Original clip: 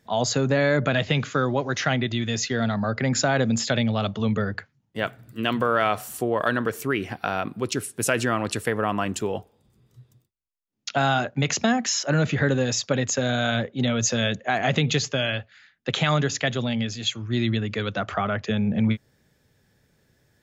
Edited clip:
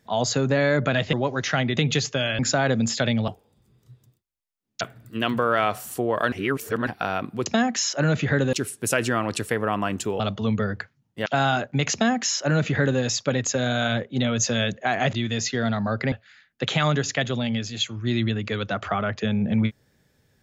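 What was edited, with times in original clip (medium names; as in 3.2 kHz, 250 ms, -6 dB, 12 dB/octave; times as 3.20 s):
1.13–1.46 s: delete
2.10–3.09 s: swap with 14.76–15.38 s
3.98–5.04 s: swap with 9.36–10.89 s
6.55–7.10 s: reverse
11.56–12.63 s: copy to 7.69 s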